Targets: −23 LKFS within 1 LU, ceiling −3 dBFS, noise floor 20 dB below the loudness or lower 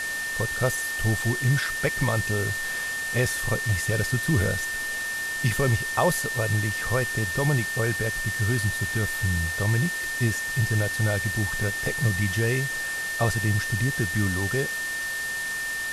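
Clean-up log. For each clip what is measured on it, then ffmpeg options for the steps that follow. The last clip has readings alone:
interfering tone 1,800 Hz; level of the tone −28 dBFS; background noise floor −30 dBFS; target noise floor −45 dBFS; integrated loudness −25.0 LKFS; sample peak −8.5 dBFS; target loudness −23.0 LKFS
→ -af "bandreject=frequency=1800:width=30"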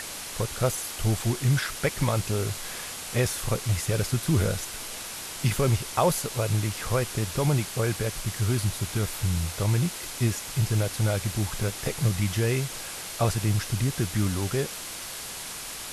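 interfering tone none found; background noise floor −37 dBFS; target noise floor −48 dBFS
→ -af "afftdn=noise_reduction=11:noise_floor=-37"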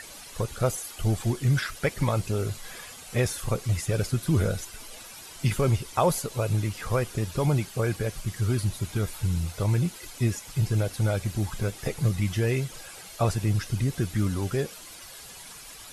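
background noise floor −45 dBFS; target noise floor −48 dBFS
→ -af "afftdn=noise_reduction=6:noise_floor=-45"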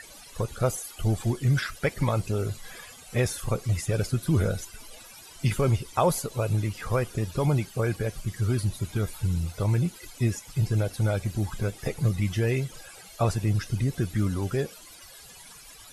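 background noise floor −48 dBFS; integrated loudness −28.0 LKFS; sample peak −10.0 dBFS; target loudness −23.0 LKFS
→ -af "volume=5dB"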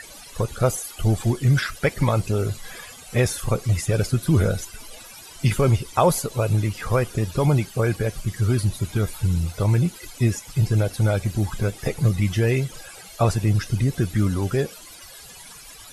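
integrated loudness −23.0 LKFS; sample peak −5.0 dBFS; background noise floor −43 dBFS

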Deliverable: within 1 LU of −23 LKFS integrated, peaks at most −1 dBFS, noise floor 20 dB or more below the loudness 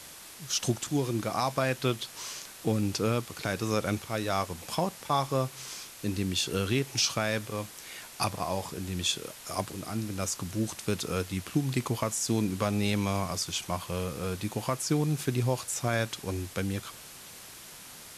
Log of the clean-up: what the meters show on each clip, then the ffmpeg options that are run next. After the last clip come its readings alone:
background noise floor −47 dBFS; target noise floor −51 dBFS; integrated loudness −31.0 LKFS; sample peak −13.5 dBFS; target loudness −23.0 LKFS
→ -af "afftdn=noise_reduction=6:noise_floor=-47"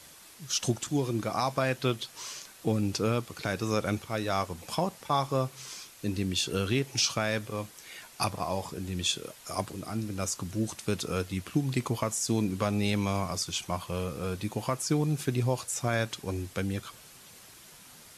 background noise floor −52 dBFS; integrated loudness −31.0 LKFS; sample peak −13.5 dBFS; target loudness −23.0 LKFS
→ -af "volume=8dB"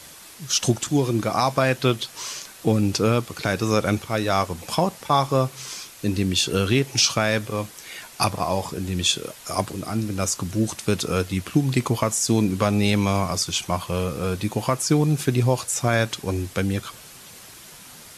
integrated loudness −23.0 LKFS; sample peak −5.5 dBFS; background noise floor −44 dBFS

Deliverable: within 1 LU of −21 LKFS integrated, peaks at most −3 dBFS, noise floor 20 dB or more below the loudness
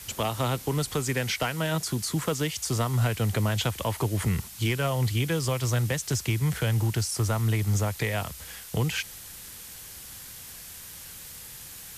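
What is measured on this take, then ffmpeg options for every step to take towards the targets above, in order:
background noise floor −44 dBFS; target noise floor −48 dBFS; integrated loudness −27.5 LKFS; sample peak −15.5 dBFS; target loudness −21.0 LKFS
→ -af "afftdn=noise_reduction=6:noise_floor=-44"
-af "volume=6.5dB"

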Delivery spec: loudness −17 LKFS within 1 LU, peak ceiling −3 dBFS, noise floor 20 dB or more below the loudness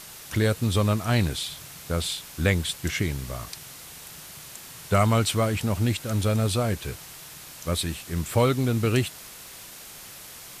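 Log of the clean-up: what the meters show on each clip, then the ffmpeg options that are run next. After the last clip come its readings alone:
background noise floor −44 dBFS; target noise floor −46 dBFS; integrated loudness −25.5 LKFS; sample peak −9.5 dBFS; target loudness −17.0 LKFS
→ -af "afftdn=noise_reduction=6:noise_floor=-44"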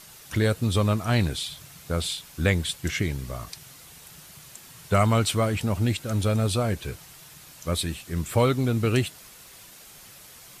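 background noise floor −48 dBFS; integrated loudness −25.5 LKFS; sample peak −9.5 dBFS; target loudness −17.0 LKFS
→ -af "volume=8.5dB,alimiter=limit=-3dB:level=0:latency=1"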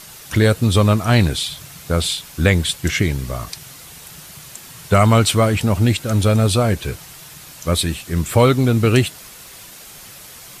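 integrated loudness −17.5 LKFS; sample peak −3.0 dBFS; background noise floor −40 dBFS

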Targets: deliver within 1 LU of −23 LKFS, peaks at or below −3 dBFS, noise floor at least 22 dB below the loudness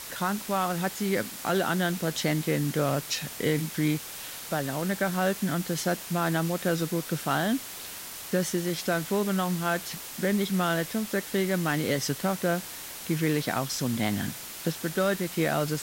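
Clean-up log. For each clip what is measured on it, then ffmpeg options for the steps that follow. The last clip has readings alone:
background noise floor −40 dBFS; target noise floor −51 dBFS; integrated loudness −28.5 LKFS; sample peak −11.5 dBFS; target loudness −23.0 LKFS
→ -af "afftdn=noise_reduction=11:noise_floor=-40"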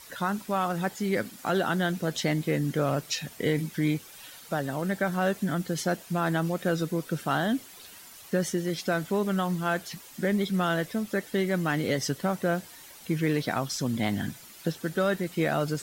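background noise floor −49 dBFS; target noise floor −51 dBFS
→ -af "afftdn=noise_reduction=6:noise_floor=-49"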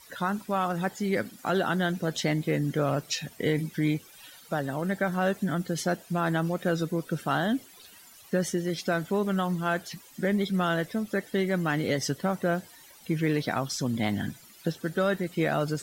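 background noise floor −53 dBFS; integrated loudness −29.0 LKFS; sample peak −12.5 dBFS; target loudness −23.0 LKFS
→ -af "volume=6dB"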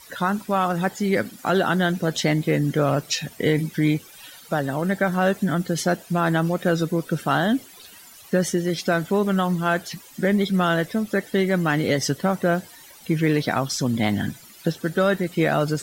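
integrated loudness −23.0 LKFS; sample peak −6.5 dBFS; background noise floor −47 dBFS

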